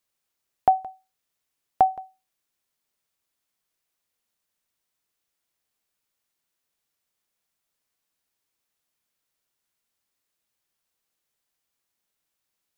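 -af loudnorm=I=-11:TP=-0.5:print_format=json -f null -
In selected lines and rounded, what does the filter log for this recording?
"input_i" : "-24.4",
"input_tp" : "-7.4",
"input_lra" : "3.0",
"input_thresh" : "-36.0",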